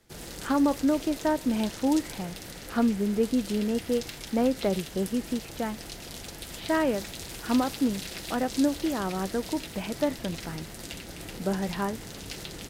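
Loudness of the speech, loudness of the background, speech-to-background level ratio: -28.5 LUFS, -39.0 LUFS, 10.5 dB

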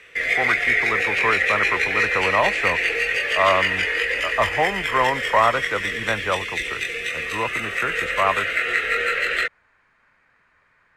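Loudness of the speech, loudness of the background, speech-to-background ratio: -24.5 LUFS, -21.0 LUFS, -3.5 dB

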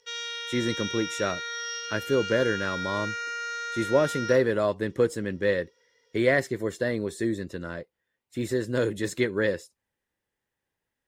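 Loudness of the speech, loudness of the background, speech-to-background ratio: -27.5 LUFS, -32.5 LUFS, 5.0 dB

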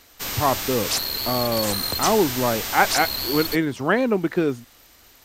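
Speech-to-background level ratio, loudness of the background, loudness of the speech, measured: 1.5 dB, -24.5 LUFS, -23.0 LUFS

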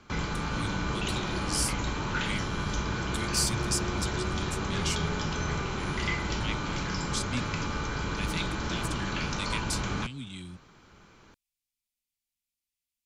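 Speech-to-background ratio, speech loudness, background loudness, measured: -4.0 dB, -36.0 LUFS, -32.0 LUFS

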